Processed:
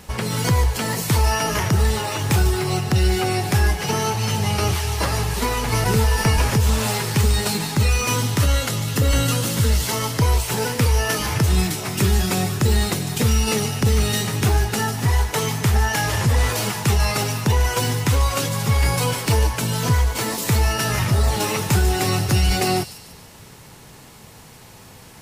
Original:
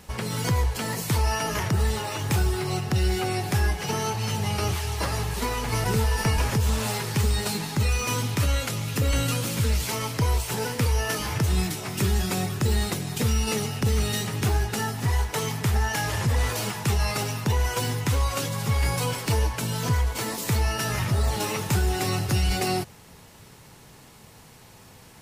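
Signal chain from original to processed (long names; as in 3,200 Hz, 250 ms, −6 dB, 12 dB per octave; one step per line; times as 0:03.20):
0:08.19–0:10.21: notch filter 2,400 Hz, Q 8.7
delay with a high-pass on its return 147 ms, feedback 45%, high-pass 4,000 Hz, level −9 dB
level +5.5 dB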